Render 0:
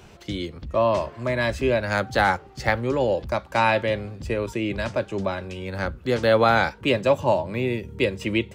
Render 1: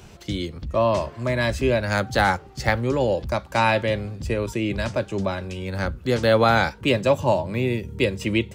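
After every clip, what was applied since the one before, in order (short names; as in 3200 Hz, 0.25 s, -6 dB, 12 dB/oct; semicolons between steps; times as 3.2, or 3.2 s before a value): tone controls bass +4 dB, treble +5 dB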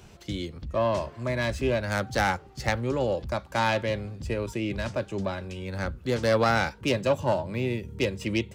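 self-modulated delay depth 0.094 ms; gain -5 dB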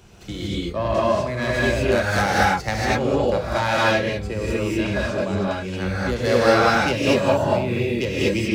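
non-linear reverb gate 0.26 s rising, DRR -7 dB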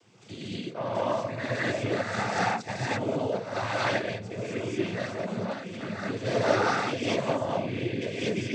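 noise vocoder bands 16; gain -8 dB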